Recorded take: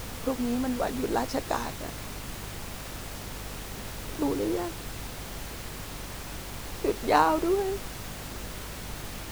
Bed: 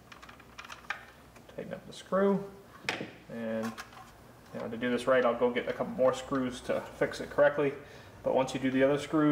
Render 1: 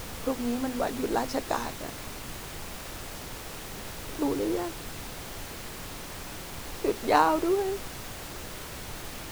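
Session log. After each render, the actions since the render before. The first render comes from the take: notches 50/100/150/200/250 Hz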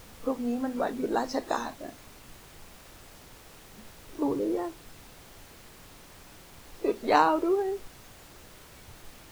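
noise print and reduce 11 dB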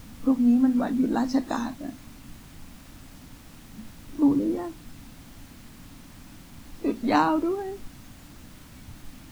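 resonant low shelf 330 Hz +6.5 dB, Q 3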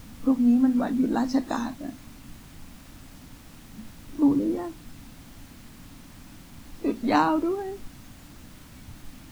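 nothing audible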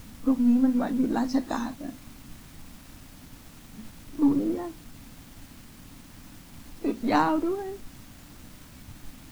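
half-wave gain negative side -3 dB; bit-crush 9-bit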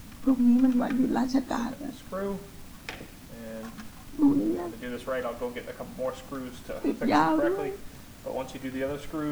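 add bed -5.5 dB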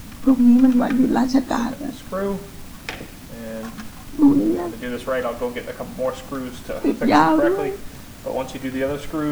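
gain +8 dB

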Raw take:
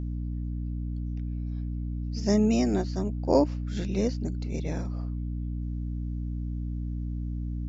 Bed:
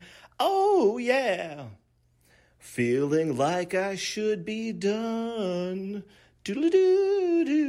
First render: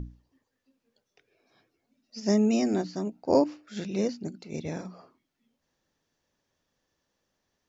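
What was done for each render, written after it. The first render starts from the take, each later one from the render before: notches 60/120/180/240/300 Hz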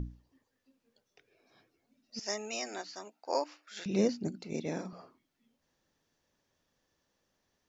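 2.19–3.86 HPF 950 Hz; 4.53–4.93 Chebyshev high-pass 230 Hz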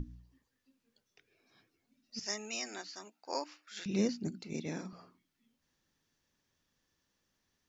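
bell 600 Hz -8 dB 1.4 oct; notches 60/120/180 Hz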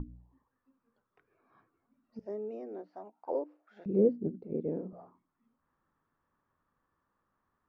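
envelope low-pass 470–1200 Hz down, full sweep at -38.5 dBFS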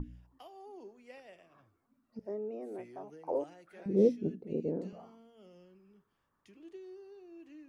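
add bed -28.5 dB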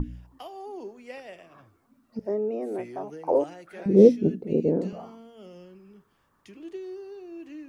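gain +11 dB

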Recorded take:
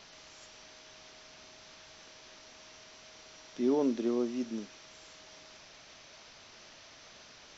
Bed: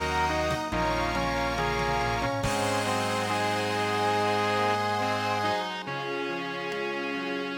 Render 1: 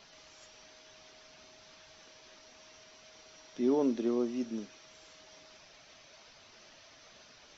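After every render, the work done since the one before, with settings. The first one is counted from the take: denoiser 6 dB, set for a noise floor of -55 dBFS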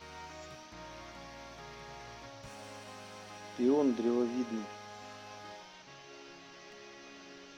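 add bed -22 dB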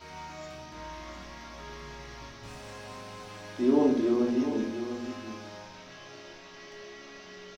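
on a send: echo 0.702 s -9.5 dB; on the sum: shoebox room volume 600 m³, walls furnished, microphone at 2.9 m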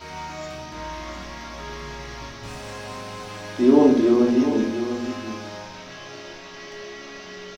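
gain +8.5 dB

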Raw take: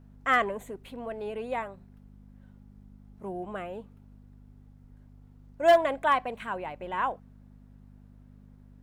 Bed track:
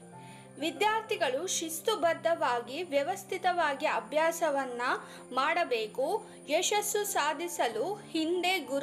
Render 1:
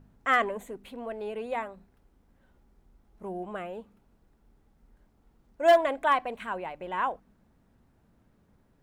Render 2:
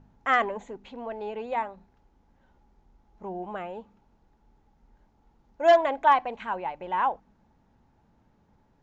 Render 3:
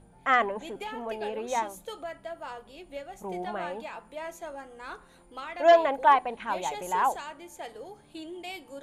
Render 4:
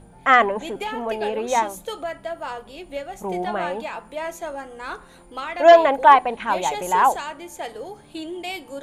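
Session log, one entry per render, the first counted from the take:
de-hum 50 Hz, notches 6
steep low-pass 7200 Hz 96 dB/oct; bell 860 Hz +11 dB 0.24 oct
add bed track -10.5 dB
gain +8.5 dB; limiter -2 dBFS, peak gain reduction 1.5 dB

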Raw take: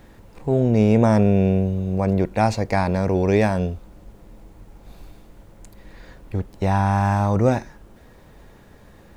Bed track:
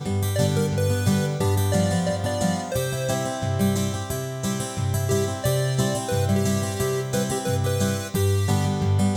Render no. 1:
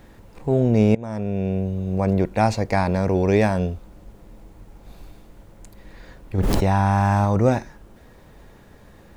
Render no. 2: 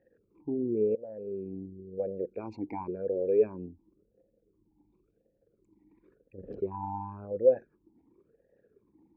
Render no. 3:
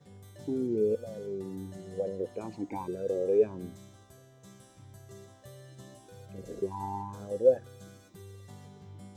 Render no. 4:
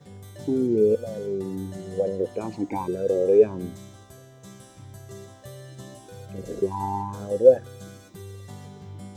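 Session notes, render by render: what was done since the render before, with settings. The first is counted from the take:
0.95–2.03 fade in, from -22.5 dB; 6.38–7.25 fast leveller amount 100%
formant sharpening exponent 2; vowel sweep e-u 0.94 Hz
add bed track -27.5 dB
gain +8 dB

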